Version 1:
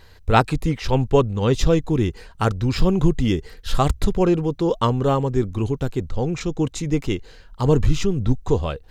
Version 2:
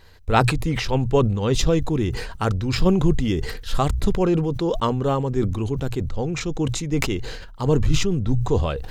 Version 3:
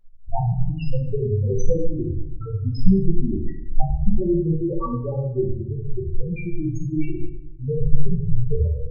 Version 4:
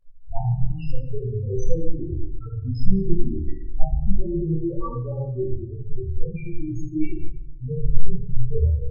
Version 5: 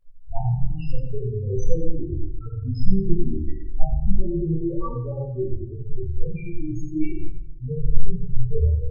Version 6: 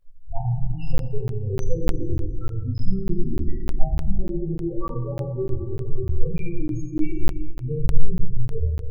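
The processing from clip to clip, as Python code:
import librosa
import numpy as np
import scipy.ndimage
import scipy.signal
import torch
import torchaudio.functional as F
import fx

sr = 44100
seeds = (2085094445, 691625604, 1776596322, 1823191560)

y1 = fx.hum_notches(x, sr, base_hz=60, count=2)
y1 = fx.sustainer(y1, sr, db_per_s=46.0)
y1 = y1 * 10.0 ** (-2.5 / 20.0)
y2 = fx.high_shelf(y1, sr, hz=4300.0, db=8.0)
y2 = fx.spec_topn(y2, sr, count=2)
y2 = fx.room_shoebox(y2, sr, seeds[0], volume_m3=180.0, walls='mixed', distance_m=0.99)
y2 = y2 * 10.0 ** (-2.0 / 20.0)
y3 = fx.chorus_voices(y2, sr, voices=4, hz=0.38, base_ms=25, depth_ms=1.8, mix_pct=60)
y3 = y3 * 10.0 ** (-1.0 / 20.0)
y4 = y3 + 10.0 ** (-12.0 / 20.0) * np.pad(y3, (int(92 * sr / 1000.0), 0))[:len(y3)]
y5 = fx.rev_plate(y4, sr, seeds[1], rt60_s=3.0, hf_ratio=0.6, predelay_ms=0, drr_db=10.0)
y5 = fx.rider(y5, sr, range_db=5, speed_s=0.5)
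y5 = fx.buffer_crackle(y5, sr, first_s=0.98, period_s=0.3, block=512, kind='zero')
y5 = y5 * 10.0 ** (-1.0 / 20.0)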